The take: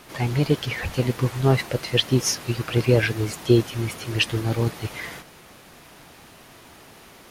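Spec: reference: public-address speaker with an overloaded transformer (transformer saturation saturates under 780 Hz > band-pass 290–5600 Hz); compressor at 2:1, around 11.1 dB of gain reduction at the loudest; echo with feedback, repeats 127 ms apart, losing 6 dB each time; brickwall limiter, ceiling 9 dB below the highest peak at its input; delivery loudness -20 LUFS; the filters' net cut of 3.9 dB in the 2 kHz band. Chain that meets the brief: peaking EQ 2 kHz -5 dB; compression 2:1, threshold -33 dBFS; peak limiter -24.5 dBFS; feedback delay 127 ms, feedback 50%, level -6 dB; transformer saturation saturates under 780 Hz; band-pass 290–5600 Hz; trim +22 dB

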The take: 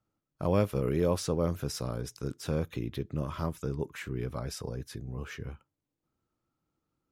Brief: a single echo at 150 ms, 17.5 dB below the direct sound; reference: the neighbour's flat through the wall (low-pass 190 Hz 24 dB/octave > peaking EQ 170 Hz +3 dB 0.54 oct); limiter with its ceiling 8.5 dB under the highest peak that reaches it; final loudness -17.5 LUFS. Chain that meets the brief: peak limiter -23 dBFS; low-pass 190 Hz 24 dB/octave; peaking EQ 170 Hz +3 dB 0.54 oct; delay 150 ms -17.5 dB; trim +22 dB

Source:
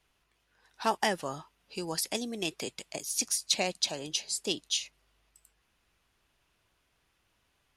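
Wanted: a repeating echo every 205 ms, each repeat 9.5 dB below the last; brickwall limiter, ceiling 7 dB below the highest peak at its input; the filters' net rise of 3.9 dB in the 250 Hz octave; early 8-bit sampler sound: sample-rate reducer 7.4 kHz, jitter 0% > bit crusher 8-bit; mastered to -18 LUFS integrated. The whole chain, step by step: peaking EQ 250 Hz +5 dB; peak limiter -19 dBFS; feedback delay 205 ms, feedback 33%, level -9.5 dB; sample-rate reducer 7.4 kHz, jitter 0%; bit crusher 8-bit; trim +15.5 dB

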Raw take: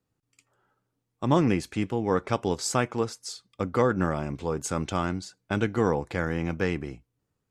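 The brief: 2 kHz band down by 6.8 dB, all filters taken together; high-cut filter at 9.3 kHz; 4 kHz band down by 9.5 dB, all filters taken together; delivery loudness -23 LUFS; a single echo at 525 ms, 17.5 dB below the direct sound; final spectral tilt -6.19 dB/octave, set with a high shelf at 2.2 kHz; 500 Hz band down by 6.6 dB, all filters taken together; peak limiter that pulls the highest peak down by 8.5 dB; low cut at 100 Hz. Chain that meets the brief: high-pass 100 Hz; low-pass 9.3 kHz; peaking EQ 500 Hz -7.5 dB; peaking EQ 2 kHz -4.5 dB; treble shelf 2.2 kHz -6.5 dB; peaking EQ 4 kHz -4.5 dB; peak limiter -20 dBFS; delay 525 ms -17.5 dB; trim +10.5 dB

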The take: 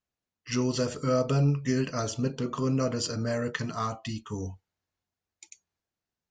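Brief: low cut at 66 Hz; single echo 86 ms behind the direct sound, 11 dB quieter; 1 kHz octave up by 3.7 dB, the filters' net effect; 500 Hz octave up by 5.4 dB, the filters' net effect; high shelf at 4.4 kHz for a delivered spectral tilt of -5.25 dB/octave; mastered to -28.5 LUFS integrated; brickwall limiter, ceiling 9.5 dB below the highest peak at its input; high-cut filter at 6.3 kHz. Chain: high-pass 66 Hz; low-pass 6.3 kHz; peaking EQ 500 Hz +5.5 dB; peaking EQ 1 kHz +3 dB; treble shelf 4.4 kHz +8.5 dB; peak limiter -19.5 dBFS; delay 86 ms -11 dB; trim +1 dB

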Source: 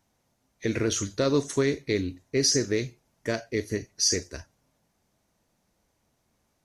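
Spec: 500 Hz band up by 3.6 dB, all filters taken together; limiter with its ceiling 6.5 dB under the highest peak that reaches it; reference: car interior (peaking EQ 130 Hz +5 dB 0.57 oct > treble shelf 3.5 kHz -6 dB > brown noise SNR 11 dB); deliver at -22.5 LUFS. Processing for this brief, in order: peaking EQ 500 Hz +4.5 dB; peak limiter -16.5 dBFS; peaking EQ 130 Hz +5 dB 0.57 oct; treble shelf 3.5 kHz -6 dB; brown noise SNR 11 dB; trim +6.5 dB

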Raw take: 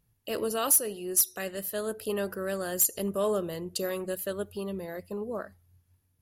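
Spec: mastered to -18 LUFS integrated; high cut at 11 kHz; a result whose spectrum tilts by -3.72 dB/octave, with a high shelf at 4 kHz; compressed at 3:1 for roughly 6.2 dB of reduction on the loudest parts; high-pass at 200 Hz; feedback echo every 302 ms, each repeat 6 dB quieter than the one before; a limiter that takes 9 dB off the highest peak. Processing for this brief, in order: high-pass 200 Hz; low-pass 11 kHz; treble shelf 4 kHz -3 dB; compression 3:1, threshold -32 dBFS; peak limiter -29.5 dBFS; feedback delay 302 ms, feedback 50%, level -6 dB; trim +19.5 dB

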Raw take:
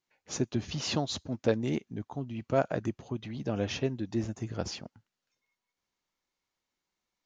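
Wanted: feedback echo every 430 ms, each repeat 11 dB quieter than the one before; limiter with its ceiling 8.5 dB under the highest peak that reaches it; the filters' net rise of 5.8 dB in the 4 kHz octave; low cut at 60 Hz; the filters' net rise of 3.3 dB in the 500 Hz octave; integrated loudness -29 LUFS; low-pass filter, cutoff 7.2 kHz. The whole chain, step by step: high-pass 60 Hz; low-pass 7.2 kHz; peaking EQ 500 Hz +4 dB; peaking EQ 4 kHz +7.5 dB; peak limiter -18.5 dBFS; feedback delay 430 ms, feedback 28%, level -11 dB; trim +3.5 dB

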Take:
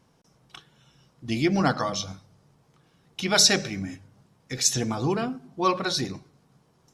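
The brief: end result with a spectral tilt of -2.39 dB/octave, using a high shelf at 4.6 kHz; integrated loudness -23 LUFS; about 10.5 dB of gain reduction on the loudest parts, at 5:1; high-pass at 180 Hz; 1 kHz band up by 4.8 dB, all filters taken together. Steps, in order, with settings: high-pass 180 Hz; peaking EQ 1 kHz +5.5 dB; treble shelf 4.6 kHz +8 dB; compression 5:1, threshold -21 dBFS; trim +4 dB

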